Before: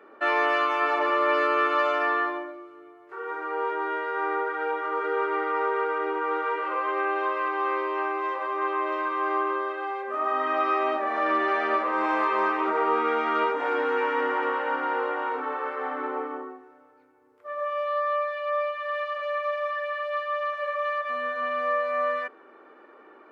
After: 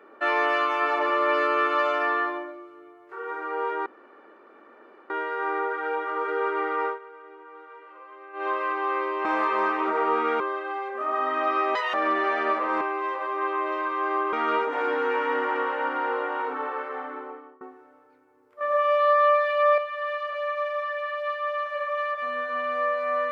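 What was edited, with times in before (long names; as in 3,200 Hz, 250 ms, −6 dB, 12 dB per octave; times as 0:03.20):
0:03.86: splice in room tone 1.24 s
0:05.61–0:07.23: duck −18.5 dB, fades 0.14 s
0:08.01–0:09.53: swap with 0:12.05–0:13.20
0:10.88–0:11.18: play speed 159%
0:15.57–0:16.48: fade out, to −23.5 dB
0:17.48–0:18.65: clip gain +7 dB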